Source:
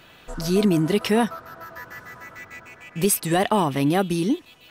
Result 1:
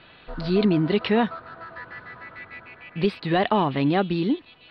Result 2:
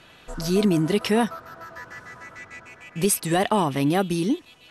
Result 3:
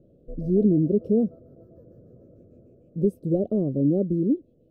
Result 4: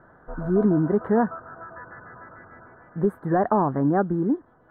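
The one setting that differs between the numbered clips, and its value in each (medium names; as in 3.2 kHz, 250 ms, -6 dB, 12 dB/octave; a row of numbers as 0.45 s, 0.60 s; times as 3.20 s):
elliptic low-pass, frequency: 4.3 kHz, 12 kHz, 560 Hz, 1.6 kHz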